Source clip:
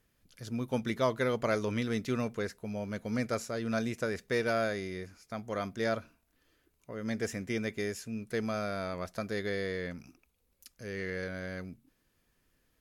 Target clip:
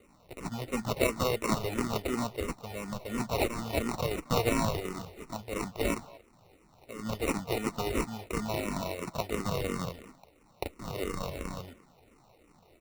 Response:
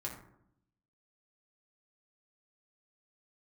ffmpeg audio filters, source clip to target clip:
-filter_complex "[0:a]crystalizer=i=9:c=0,acrusher=samples=27:mix=1:aa=0.000001,asplit=2[a][b];[b]adelay=230,highpass=300,lowpass=3.4k,asoftclip=type=hard:threshold=-21.5dB,volume=-19dB[c];[a][c]amix=inputs=2:normalize=0,acrusher=bits=4:mode=log:mix=0:aa=0.000001,asplit=2[d][e];[e]afreqshift=-2.9[f];[d][f]amix=inputs=2:normalize=1"

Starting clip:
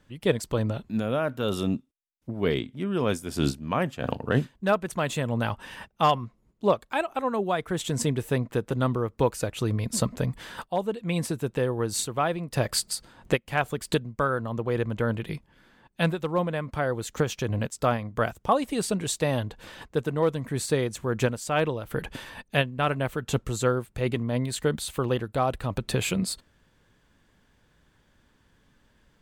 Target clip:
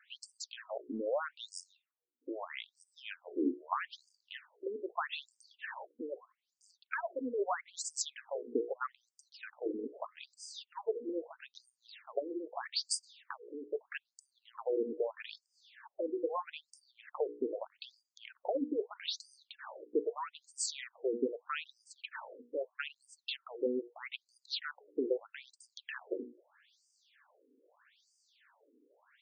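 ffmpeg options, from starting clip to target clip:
-filter_complex "[0:a]bandreject=f=60:t=h:w=6,bandreject=f=120:t=h:w=6,bandreject=f=180:t=h:w=6,bandreject=f=240:t=h:w=6,bandreject=f=300:t=h:w=6,bandreject=f=360:t=h:w=6,bandreject=f=420:t=h:w=6,bandreject=f=480:t=h:w=6,acrossover=split=170[a][b];[b]acompressor=threshold=-37dB:ratio=3[c];[a][c]amix=inputs=2:normalize=0,afftfilt=real='re*between(b*sr/1024,340*pow(6700/340,0.5+0.5*sin(2*PI*0.79*pts/sr))/1.41,340*pow(6700/340,0.5+0.5*sin(2*PI*0.79*pts/sr))*1.41)':imag='im*between(b*sr/1024,340*pow(6700/340,0.5+0.5*sin(2*PI*0.79*pts/sr))/1.41,340*pow(6700/340,0.5+0.5*sin(2*PI*0.79*pts/sr))*1.41)':win_size=1024:overlap=0.75,volume=6dB"

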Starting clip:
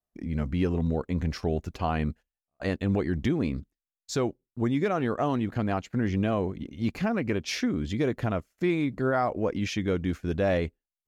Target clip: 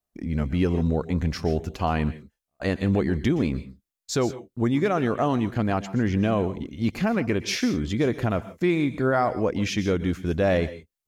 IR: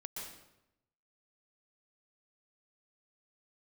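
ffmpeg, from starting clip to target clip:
-filter_complex "[0:a]asplit=2[a][b];[1:a]atrim=start_sample=2205,afade=t=out:st=0.22:d=0.01,atrim=end_sample=10143,highshelf=f=3.8k:g=11[c];[b][c]afir=irnorm=-1:irlink=0,volume=-9dB[d];[a][d]amix=inputs=2:normalize=0,volume=2dB"

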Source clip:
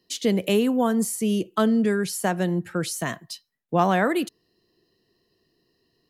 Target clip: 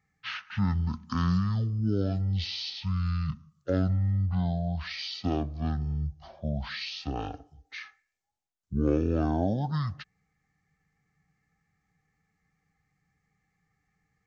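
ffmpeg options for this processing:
-af "asetrate=18846,aresample=44100,volume=-6dB"

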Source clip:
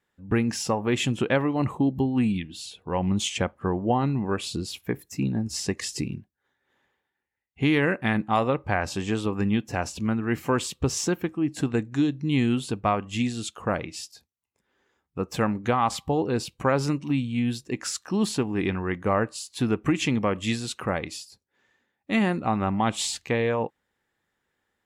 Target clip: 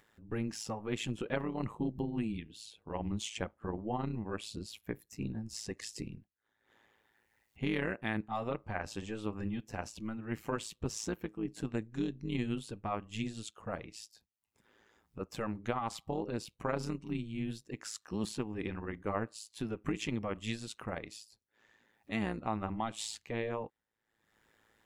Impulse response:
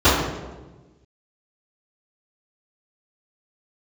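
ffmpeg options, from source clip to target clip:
-af "tremolo=f=110:d=0.788,acompressor=mode=upward:threshold=-44dB:ratio=2.5,volume=-8.5dB"

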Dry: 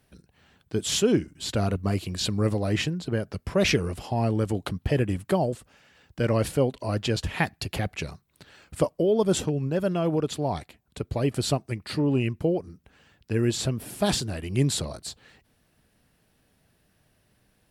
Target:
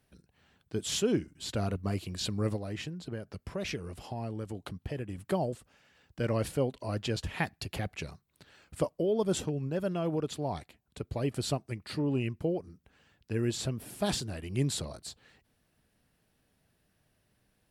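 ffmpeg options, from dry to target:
-filter_complex "[0:a]asettb=1/sr,asplit=3[a][b][c];[a]atrim=end=2.564[d];[b]atrim=start=2.56:end=5.18,asetpts=PTS-STARTPTS,afade=t=in:d=0.004:c=qsin,afade=t=out:st=2.616:d=0.004:c=qsin,acompressor=threshold=-32dB:ratio=2[e];[c]atrim=start=5.176[f];[d][e]acrossfade=d=0.004:c1=hsin:c2=qsin[g];[g][f]acrossfade=d=0.004:c1=qsin:c2=hsin,volume=-6.5dB"

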